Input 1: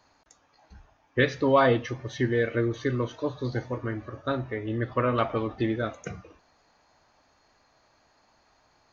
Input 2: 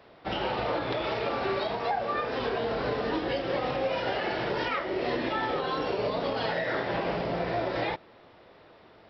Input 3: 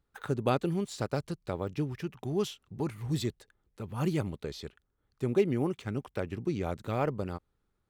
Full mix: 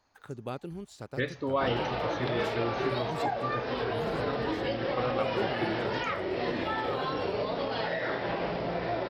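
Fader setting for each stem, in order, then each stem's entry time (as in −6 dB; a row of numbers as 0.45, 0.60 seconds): −8.5, −2.0, −9.5 decibels; 0.00, 1.35, 0.00 seconds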